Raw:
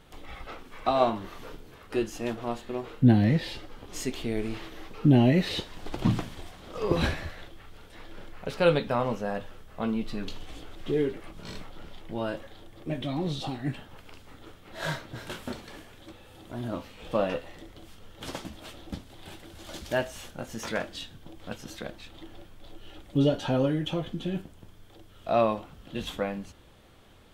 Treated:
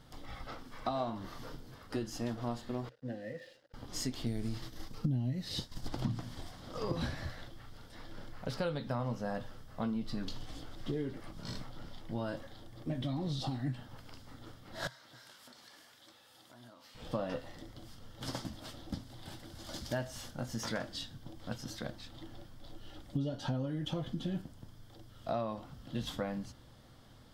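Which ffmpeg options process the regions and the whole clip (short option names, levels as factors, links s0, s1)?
-filter_complex "[0:a]asettb=1/sr,asplit=3[s0][s1][s2];[s0]atrim=end=2.894[s3];[s1]atrim=start=2.89:end=3.74,asetpts=PTS-STARTPTS,afade=t=in:d=0.004:c=qsin,afade=t=out:st=0.846:d=0.004:c=qsin,asplit=3[s4][s5][s6];[s4]bandpass=f=530:t=q:w=8,volume=1[s7];[s5]bandpass=f=1840:t=q:w=8,volume=0.501[s8];[s6]bandpass=f=2480:t=q:w=8,volume=0.355[s9];[s7][s8][s9]amix=inputs=3:normalize=0,bandreject=f=50:t=h:w=6,bandreject=f=100:t=h:w=6,bandreject=f=150:t=h:w=6,bandreject=f=200:t=h:w=6,bandreject=f=250:t=h:w=6,bandreject=f=300:t=h:w=6,bandreject=f=350:t=h:w=6,bandreject=f=400:t=h:w=6,aeval=exprs='sgn(val(0))*max(abs(val(0))-0.00106,0)':c=same[s10];[s2]atrim=start=3.736[s11];[s3][s10]acrossfade=d=0.004:c1=hsin:c2=qsin[s12];[s12][s11]acrossfade=d=0.004:c1=qsin:c2=hsin,asettb=1/sr,asplit=3[s13][s14][s15];[s13]atrim=end=4.264[s16];[s14]atrim=start=4.26:end=5.88,asetpts=PTS-STARTPTS,afade=t=in:d=0.004:c=qsin,afade=t=out:st=1.616:d=0.004:c=qsin,agate=range=0.0224:threshold=0.0141:ratio=3:release=100:detection=peak,bass=f=250:g=7,treble=f=4000:g=9[s17];[s15]atrim=start=5.876[s18];[s16][s17]acrossfade=d=0.004:c1=hsin:c2=qsin[s19];[s19][s18]acrossfade=d=0.004:c1=qsin:c2=hsin,asettb=1/sr,asplit=3[s20][s21][s22];[s20]atrim=end=14.874[s23];[s21]atrim=start=14.87:end=16.95,asetpts=PTS-STARTPTS,afade=t=in:d=0.004:c=qsin,afade=t=out:st=2.076:d=0.004:c=qsin,highpass=f=1400:p=1,acompressor=threshold=0.00355:ratio=8:attack=3.2:release=140:knee=1:detection=peak[s24];[s22]atrim=start=16.946[s25];[s23][s24]acrossfade=d=0.004:c1=hsin:c2=qsin[s26];[s26][s25]acrossfade=d=0.004:c1=qsin:c2=hsin,equalizer=f=125:t=o:w=0.33:g=10,equalizer=f=250:t=o:w=0.33:g=5,equalizer=f=400:t=o:w=0.33:g=-6,equalizer=f=2500:t=o:w=0.33:g=-9,equalizer=f=5000:t=o:w=0.33:g=8,acompressor=threshold=0.0398:ratio=8,volume=0.668"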